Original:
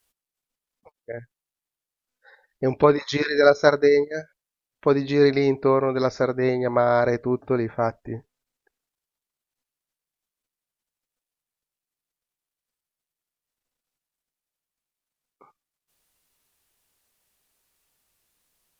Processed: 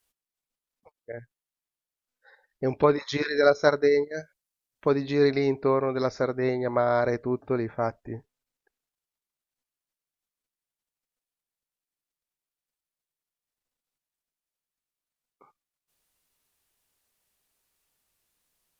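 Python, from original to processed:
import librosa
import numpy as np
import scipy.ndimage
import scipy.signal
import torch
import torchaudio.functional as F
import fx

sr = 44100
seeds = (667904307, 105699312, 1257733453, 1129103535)

y = fx.bass_treble(x, sr, bass_db=2, treble_db=5, at=(4.17, 4.88))
y = y * librosa.db_to_amplitude(-4.0)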